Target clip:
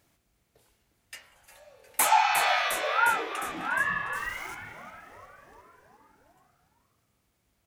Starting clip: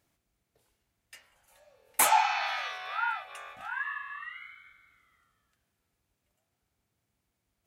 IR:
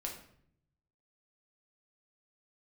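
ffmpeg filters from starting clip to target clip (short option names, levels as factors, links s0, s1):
-filter_complex "[0:a]asettb=1/sr,asplit=3[s0][s1][s2];[s0]atrim=end=4.154[s3];[s1]atrim=start=4.15:end=4.55,asetpts=PTS-STARTPTS,afade=t=in:d=0.004:c=qsin,afade=t=out:st=0.396:d=0.004:c=qsin,aeval=exprs='val(0)*gte(abs(val(0)),0.00398)':c=same[s4];[s2]atrim=start=4.546[s5];[s3][s4]acrossfade=d=0.004:c1=hsin:c2=qsin[s6];[s6][s5]acrossfade=d=0.004:c1=qsin:c2=hsin,asplit=8[s7][s8][s9][s10][s11][s12][s13][s14];[s8]adelay=356,afreqshift=-140,volume=0.2[s15];[s9]adelay=712,afreqshift=-280,volume=0.127[s16];[s10]adelay=1068,afreqshift=-420,volume=0.0813[s17];[s11]adelay=1424,afreqshift=-560,volume=0.0525[s18];[s12]adelay=1780,afreqshift=-700,volume=0.0335[s19];[s13]adelay=2136,afreqshift=-840,volume=0.0214[s20];[s14]adelay=2492,afreqshift=-980,volume=0.0136[s21];[s7][s15][s16][s17][s18][s19][s20][s21]amix=inputs=8:normalize=0,alimiter=limit=0.126:level=0:latency=1:release=335,volume=2.24"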